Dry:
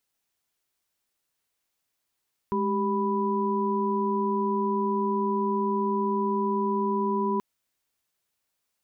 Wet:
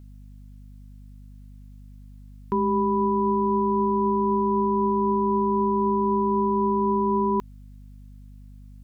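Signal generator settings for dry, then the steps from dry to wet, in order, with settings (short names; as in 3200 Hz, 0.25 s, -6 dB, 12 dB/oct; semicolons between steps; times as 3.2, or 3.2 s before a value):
chord G#3/G4/B5 sine, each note -27.5 dBFS 4.88 s
in parallel at +1 dB: limiter -26 dBFS; on the sum: hum 50 Hz, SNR 20 dB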